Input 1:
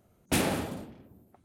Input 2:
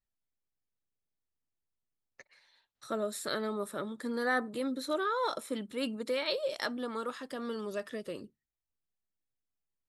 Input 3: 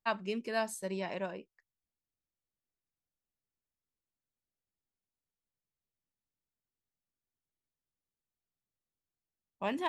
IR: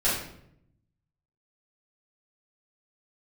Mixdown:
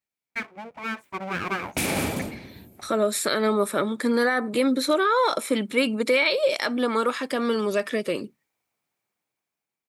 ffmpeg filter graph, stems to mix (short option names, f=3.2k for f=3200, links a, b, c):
-filter_complex "[0:a]bass=f=250:g=0,treble=f=4k:g=6,alimiter=limit=-23.5dB:level=0:latency=1:release=165,adelay=1450,volume=-2dB[a];[1:a]volume=2dB[b];[2:a]firequalizer=gain_entry='entry(240,0);entry(860,10);entry(3000,-21)':delay=0.05:min_phase=1,dynaudnorm=f=160:g=11:m=3.5dB,aeval=exprs='abs(val(0))':c=same,adelay=300,volume=-0.5dB[c];[b][c]amix=inputs=2:normalize=0,highpass=150,alimiter=level_in=0.5dB:limit=-24dB:level=0:latency=1:release=126,volume=-0.5dB,volume=0dB[d];[a][d]amix=inputs=2:normalize=0,equalizer=f=2.3k:w=5.9:g=10,dynaudnorm=f=430:g=7:m=11.5dB"